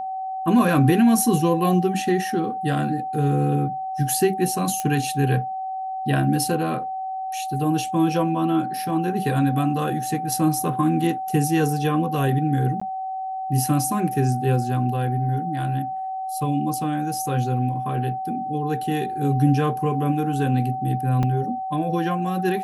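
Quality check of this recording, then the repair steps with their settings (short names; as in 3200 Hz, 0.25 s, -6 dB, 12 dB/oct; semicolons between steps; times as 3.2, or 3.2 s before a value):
tone 760 Hz -26 dBFS
4.8 pop -11 dBFS
12.8–12.81 gap 15 ms
21.23 gap 3.7 ms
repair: de-click; notch 760 Hz, Q 30; interpolate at 12.8, 15 ms; interpolate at 21.23, 3.7 ms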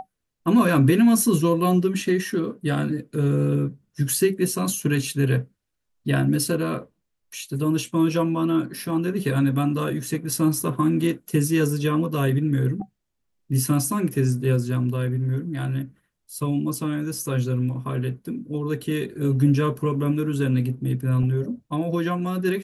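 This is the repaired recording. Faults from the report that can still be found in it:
none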